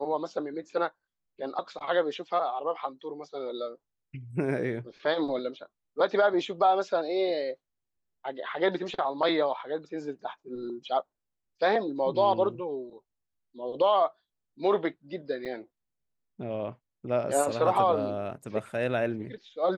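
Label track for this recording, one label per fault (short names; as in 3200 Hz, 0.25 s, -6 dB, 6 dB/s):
15.450000	15.460000	gap 7.1 ms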